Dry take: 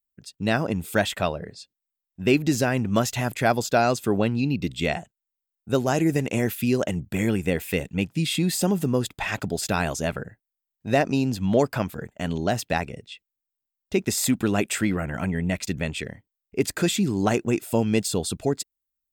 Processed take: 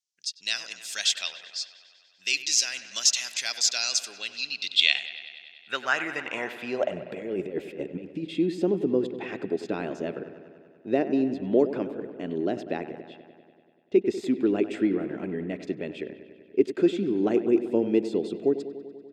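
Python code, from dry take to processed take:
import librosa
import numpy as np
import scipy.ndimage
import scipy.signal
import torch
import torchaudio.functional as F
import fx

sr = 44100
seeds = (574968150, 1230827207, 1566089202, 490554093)

y = fx.weighting(x, sr, curve='D')
y = fx.over_compress(y, sr, threshold_db=-27.0, ratio=-0.5, at=(6.87, 8.28), fade=0.02)
y = fx.filter_sweep_bandpass(y, sr, from_hz=5800.0, to_hz=350.0, start_s=4.33, end_s=7.6, q=2.9)
y = fx.echo_wet_lowpass(y, sr, ms=97, feedback_pct=73, hz=2900.0, wet_db=-12.5)
y = y * 10.0 ** (5.5 / 20.0)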